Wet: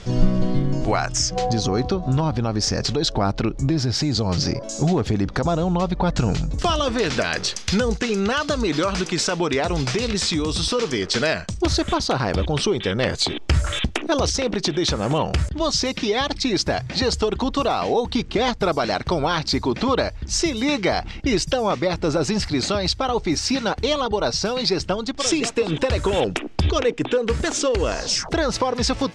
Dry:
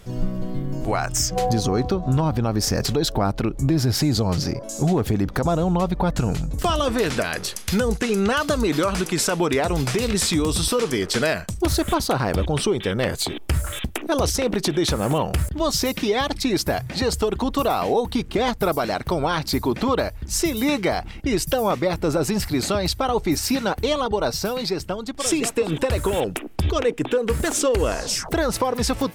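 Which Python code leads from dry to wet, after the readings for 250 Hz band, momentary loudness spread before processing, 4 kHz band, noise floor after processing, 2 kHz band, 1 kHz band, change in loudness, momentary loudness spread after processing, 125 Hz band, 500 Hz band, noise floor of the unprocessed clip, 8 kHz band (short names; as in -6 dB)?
0.0 dB, 4 LU, +3.5 dB, -34 dBFS, +1.5 dB, +0.5 dB, +0.5 dB, 2 LU, +0.5 dB, 0.0 dB, -36 dBFS, -0.5 dB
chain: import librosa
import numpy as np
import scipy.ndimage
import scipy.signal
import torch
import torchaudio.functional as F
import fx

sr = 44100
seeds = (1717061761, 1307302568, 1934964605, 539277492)

y = scipy.signal.sosfilt(scipy.signal.butter(4, 6100.0, 'lowpass', fs=sr, output='sos'), x)
y = fx.high_shelf(y, sr, hz=4200.0, db=8.0)
y = fx.rider(y, sr, range_db=10, speed_s=0.5)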